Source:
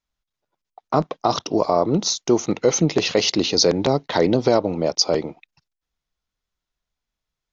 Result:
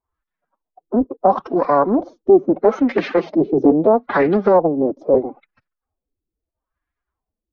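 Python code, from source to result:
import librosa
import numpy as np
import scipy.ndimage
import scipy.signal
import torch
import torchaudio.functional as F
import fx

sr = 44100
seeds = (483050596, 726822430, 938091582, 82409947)

y = fx.pitch_keep_formants(x, sr, semitones=8.5)
y = fx.filter_lfo_lowpass(y, sr, shape='sine', hz=0.76, low_hz=340.0, high_hz=1800.0, q=2.6)
y = fx.doppler_dist(y, sr, depth_ms=0.22)
y = y * 10.0 ** (2.0 / 20.0)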